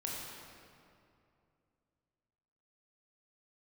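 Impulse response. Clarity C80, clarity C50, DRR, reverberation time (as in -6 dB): 0.0 dB, -1.5 dB, -4.0 dB, 2.6 s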